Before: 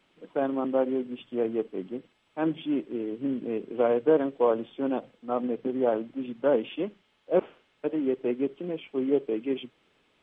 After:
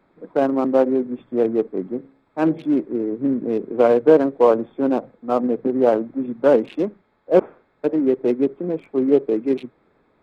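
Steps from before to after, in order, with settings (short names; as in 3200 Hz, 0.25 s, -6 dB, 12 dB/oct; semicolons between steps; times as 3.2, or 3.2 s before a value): Wiener smoothing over 15 samples; 1.97–2.69 de-hum 67.77 Hz, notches 13; gain +9 dB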